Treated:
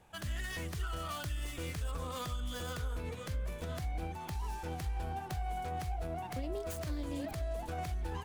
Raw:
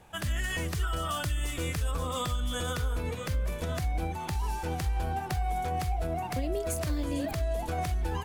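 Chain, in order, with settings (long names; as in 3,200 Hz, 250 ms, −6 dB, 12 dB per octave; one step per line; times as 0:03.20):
phase distortion by the signal itself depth 0.1 ms
level −7 dB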